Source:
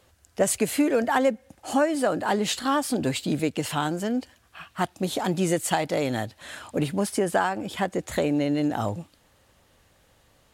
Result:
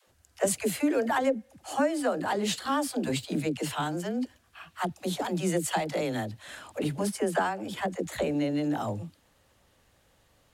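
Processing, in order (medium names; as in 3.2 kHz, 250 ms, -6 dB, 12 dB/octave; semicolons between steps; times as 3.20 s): phase dispersion lows, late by 74 ms, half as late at 350 Hz; trim -4 dB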